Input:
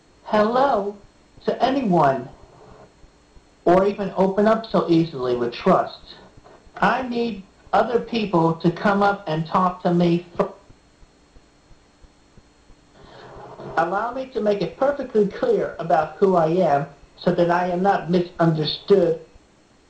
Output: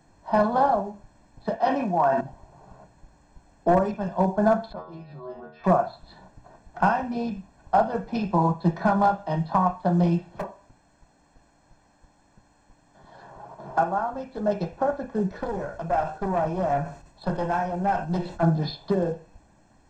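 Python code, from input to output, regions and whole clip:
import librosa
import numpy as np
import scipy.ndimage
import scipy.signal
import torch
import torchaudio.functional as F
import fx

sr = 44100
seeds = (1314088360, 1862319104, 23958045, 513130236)

y = fx.chain(x, sr, fx.highpass(hz=560.0, slope=6),
    fx.high_shelf(hz=5600.0, db=-8.5),
    fx.sustainer(db_per_s=29.0), at=(1.56, 2.21))
y = fx.chain(y, sr, fx.bass_treble(bass_db=-2, treble_db=-14),
    fx.stiff_resonator(f0_hz=74.0, decay_s=0.57, stiffness=0.002),
    fx.pre_swell(db_per_s=86.0), at=(4.72, 5.64))
y = fx.chain(y, sr, fx.low_shelf(hz=170.0, db=-8.0),
    fx.clip_hard(threshold_db=-21.5), at=(10.32, 13.76))
y = fx.chain(y, sr, fx.high_shelf(hz=5300.0, db=6.5),
    fx.tube_stage(drive_db=15.0, bias=0.5),
    fx.sustainer(db_per_s=110.0), at=(15.35, 18.43))
y = fx.peak_eq(y, sr, hz=3500.0, db=-11.0, octaves=1.5)
y = fx.hum_notches(y, sr, base_hz=60, count=2)
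y = y + 0.61 * np.pad(y, (int(1.2 * sr / 1000.0), 0))[:len(y)]
y = F.gain(torch.from_numpy(y), -3.5).numpy()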